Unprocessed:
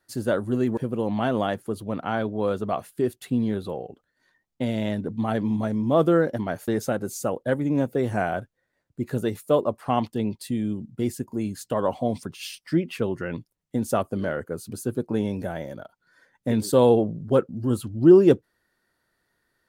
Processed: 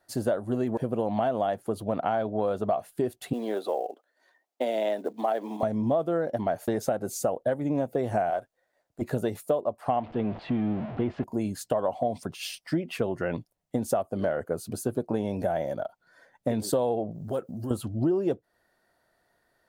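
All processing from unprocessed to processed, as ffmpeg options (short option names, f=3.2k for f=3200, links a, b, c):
-filter_complex "[0:a]asettb=1/sr,asplit=3[a][b][c];[a]atrim=end=3.334[d];[b]atrim=start=3.33:end=5.63,asetpts=PTS-STARTPTS,afade=t=in:d=0.004:c=qsin,afade=t=out:st=2.296:d=0.004:c=qsin,highpass=f=310:w=0.5412,highpass=f=310:w=1.3066,acrusher=bits=7:mode=log:mix=0:aa=0.000001[e];[c]atrim=start=5.626[f];[d][e]acrossfade=d=0.004:c1=hsin:c2=qsin[g];[g][f]acrossfade=d=0.004:c1=qsin:c2=hsin,asettb=1/sr,asplit=3[h][i][j];[h]atrim=end=8.304[k];[i]atrim=start=8.3:end=9.02,asetpts=PTS-STARTPTS,afade=t=in:d=0.004:c=qsin,afade=t=out:st=0.716:d=0.004:c=qsin,aeval=exprs='if(lt(val(0),0),0.708*val(0),val(0))':c=same,bass=f=250:g=-12,treble=f=4k:g=3[l];[j]atrim=start=9.016[m];[k][l]acrossfade=d=0.004:c1=hsin:c2=qsin[n];[n][m]acrossfade=d=0.004:c1=qsin:c2=hsin,asettb=1/sr,asplit=3[o][p][q];[o]atrim=end=9.964[r];[p]atrim=start=9.96:end=11.24,asetpts=PTS-STARTPTS,afade=t=in:d=0.004:c=qsin,afade=t=out:st=1.276:d=0.004:c=qsin,aeval=exprs='val(0)+0.5*0.0178*sgn(val(0))':c=same,lowpass=f=3k:w=0.5412,lowpass=f=3k:w=1.3066[s];[q]atrim=start=11.236[t];[r][s]acrossfade=d=0.004:c1=hsin:c2=qsin[u];[u][t]acrossfade=d=0.004:c1=qsin:c2=hsin,asettb=1/sr,asplit=3[v][w][x];[v]atrim=end=17.114[y];[w]atrim=start=17.11:end=17.71,asetpts=PTS-STARTPTS,afade=t=in:d=0.004:c=qsin,afade=t=out:st=0.596:d=0.004:c=qsin,aemphasis=mode=production:type=75kf,acompressor=threshold=-34dB:ratio=3:attack=3.2:release=140:knee=1:detection=peak[z];[x]atrim=start=17.706[aa];[y][z]acrossfade=d=0.004:c1=hsin:c2=qsin[ab];[ab][aa]acrossfade=d=0.004:c1=qsin:c2=hsin,equalizer=f=680:t=o:w=0.7:g=12,acompressor=threshold=-23dB:ratio=8"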